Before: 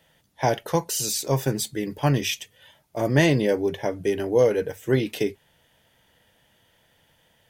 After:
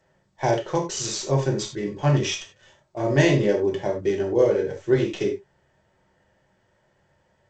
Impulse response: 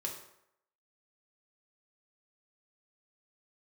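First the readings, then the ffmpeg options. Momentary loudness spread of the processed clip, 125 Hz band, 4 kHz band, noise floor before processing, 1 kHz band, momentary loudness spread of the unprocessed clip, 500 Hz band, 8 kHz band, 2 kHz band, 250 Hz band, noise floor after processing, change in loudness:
9 LU, +1.5 dB, -1.0 dB, -64 dBFS, -0.5 dB, 9 LU, +1.5 dB, -2.5 dB, -0.5 dB, +0.5 dB, -66 dBFS, +0.5 dB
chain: -filter_complex "[0:a]acrossover=split=2100[s0][s1];[s1]acrusher=bits=6:dc=4:mix=0:aa=0.000001[s2];[s0][s2]amix=inputs=2:normalize=0[s3];[1:a]atrim=start_sample=2205,atrim=end_sample=4410[s4];[s3][s4]afir=irnorm=-1:irlink=0" -ar 16000 -c:a g722

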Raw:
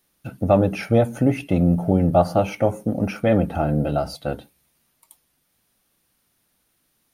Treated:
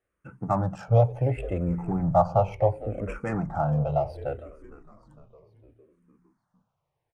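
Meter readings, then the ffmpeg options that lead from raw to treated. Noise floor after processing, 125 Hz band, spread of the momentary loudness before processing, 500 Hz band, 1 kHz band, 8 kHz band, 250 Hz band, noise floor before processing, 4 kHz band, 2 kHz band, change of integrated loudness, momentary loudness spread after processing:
-81 dBFS, -3.0 dB, 11 LU, -5.5 dB, -1.5 dB, under -10 dB, -10.5 dB, -69 dBFS, under -15 dB, -9.0 dB, -5.5 dB, 11 LU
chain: -filter_complex "[0:a]adynamicsmooth=sensitivity=2:basefreq=2400,equalizer=f=125:t=o:w=1:g=10,equalizer=f=250:t=o:w=1:g=-11,equalizer=f=500:t=o:w=1:g=3,equalizer=f=1000:t=o:w=1:g=8,equalizer=f=4000:t=o:w=1:g=-9,equalizer=f=8000:t=o:w=1:g=11,asplit=2[s0][s1];[s1]asplit=5[s2][s3][s4][s5][s6];[s2]adelay=457,afreqshift=-65,volume=0.15[s7];[s3]adelay=914,afreqshift=-130,volume=0.0794[s8];[s4]adelay=1371,afreqshift=-195,volume=0.0422[s9];[s5]adelay=1828,afreqshift=-260,volume=0.0224[s10];[s6]adelay=2285,afreqshift=-325,volume=0.0117[s11];[s7][s8][s9][s10][s11]amix=inputs=5:normalize=0[s12];[s0][s12]amix=inputs=2:normalize=0,asplit=2[s13][s14];[s14]afreqshift=-0.69[s15];[s13][s15]amix=inputs=2:normalize=1,volume=0.531"

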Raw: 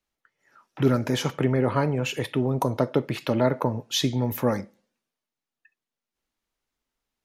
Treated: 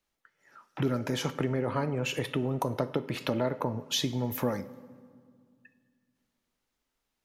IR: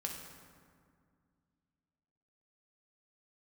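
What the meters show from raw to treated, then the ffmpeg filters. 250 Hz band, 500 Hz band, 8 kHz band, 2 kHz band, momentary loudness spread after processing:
-6.5 dB, -6.5 dB, -3.5 dB, -4.0 dB, 4 LU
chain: -filter_complex "[0:a]acompressor=threshold=0.0282:ratio=2.5,asplit=2[s0][s1];[1:a]atrim=start_sample=2205,lowshelf=f=95:g=-11.5[s2];[s1][s2]afir=irnorm=-1:irlink=0,volume=0.299[s3];[s0][s3]amix=inputs=2:normalize=0"

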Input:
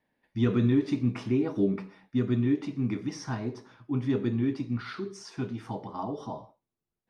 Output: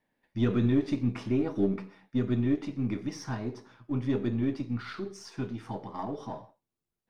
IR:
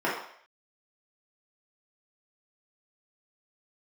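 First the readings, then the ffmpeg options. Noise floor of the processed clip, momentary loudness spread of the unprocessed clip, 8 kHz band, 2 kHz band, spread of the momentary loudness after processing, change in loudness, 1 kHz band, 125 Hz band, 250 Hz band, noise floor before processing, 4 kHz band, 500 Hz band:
under -85 dBFS, 13 LU, no reading, -1.5 dB, 13 LU, -1.5 dB, -1.0 dB, -1.5 dB, -1.5 dB, under -85 dBFS, -1.5 dB, -1.0 dB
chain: -af "aeval=exprs='if(lt(val(0),0),0.708*val(0),val(0))':c=same"

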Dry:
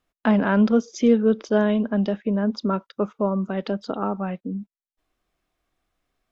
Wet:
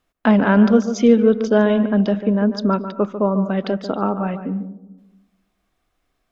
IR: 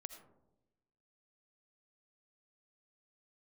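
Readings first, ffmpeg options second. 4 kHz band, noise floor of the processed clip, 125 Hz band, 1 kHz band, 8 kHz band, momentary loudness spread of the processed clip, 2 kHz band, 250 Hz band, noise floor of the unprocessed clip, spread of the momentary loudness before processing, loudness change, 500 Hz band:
+4.5 dB, -72 dBFS, +5.0 dB, +5.0 dB, no reading, 10 LU, +5.0 dB, +5.0 dB, under -85 dBFS, 11 LU, +5.0 dB, +5.0 dB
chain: -filter_complex "[0:a]asplit=2[s0][s1];[1:a]atrim=start_sample=2205,lowpass=2400,adelay=145[s2];[s1][s2]afir=irnorm=-1:irlink=0,volume=0.562[s3];[s0][s3]amix=inputs=2:normalize=0,volume=1.68"

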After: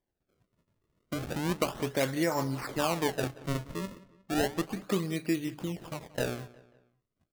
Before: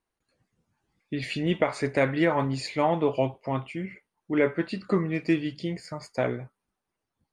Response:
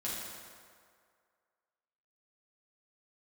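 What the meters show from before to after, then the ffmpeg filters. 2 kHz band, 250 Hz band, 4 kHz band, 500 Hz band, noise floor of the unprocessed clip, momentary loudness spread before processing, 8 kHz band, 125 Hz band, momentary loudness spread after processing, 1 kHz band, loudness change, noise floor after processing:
-5.0 dB, -5.0 dB, 0.0 dB, -6.0 dB, -85 dBFS, 11 LU, +7.5 dB, -4.0 dB, 10 LU, -4.5 dB, -5.0 dB, -84 dBFS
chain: -filter_complex "[0:a]asplit=2[s0][s1];[s1]acompressor=threshold=0.0224:ratio=6,volume=1.12[s2];[s0][s2]amix=inputs=2:normalize=0,acrusher=samples=32:mix=1:aa=0.000001:lfo=1:lforange=51.2:lforate=0.33,asplit=2[s3][s4];[s4]adelay=180,lowpass=f=4100:p=1,volume=0.112,asplit=2[s5][s6];[s6]adelay=180,lowpass=f=4100:p=1,volume=0.44,asplit=2[s7][s8];[s8]adelay=180,lowpass=f=4100:p=1,volume=0.44[s9];[s3][s5][s7][s9]amix=inputs=4:normalize=0,volume=0.422"

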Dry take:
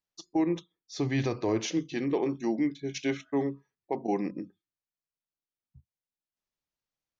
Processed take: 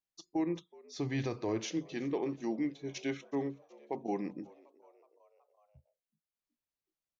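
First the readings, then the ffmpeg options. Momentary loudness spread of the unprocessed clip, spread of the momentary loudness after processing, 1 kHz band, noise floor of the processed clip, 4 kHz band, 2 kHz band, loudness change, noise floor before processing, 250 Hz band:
8 LU, 8 LU, -6.0 dB, under -85 dBFS, -6.0 dB, -6.0 dB, -6.0 dB, under -85 dBFS, -6.0 dB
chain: -filter_complex "[0:a]asplit=5[s0][s1][s2][s3][s4];[s1]adelay=372,afreqshift=81,volume=0.0631[s5];[s2]adelay=744,afreqshift=162,volume=0.0398[s6];[s3]adelay=1116,afreqshift=243,volume=0.0251[s7];[s4]adelay=1488,afreqshift=324,volume=0.0158[s8];[s0][s5][s6][s7][s8]amix=inputs=5:normalize=0,volume=0.501"

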